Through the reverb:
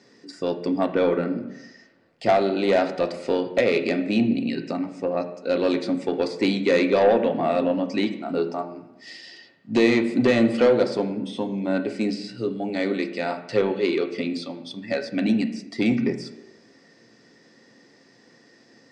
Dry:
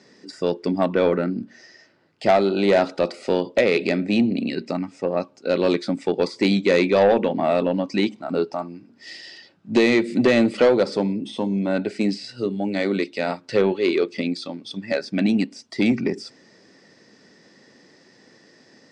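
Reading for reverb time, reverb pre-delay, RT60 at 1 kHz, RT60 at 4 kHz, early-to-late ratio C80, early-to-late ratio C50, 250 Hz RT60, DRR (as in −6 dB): 1.0 s, 3 ms, 1.0 s, 0.75 s, 13.5 dB, 11.5 dB, 0.90 s, 6.0 dB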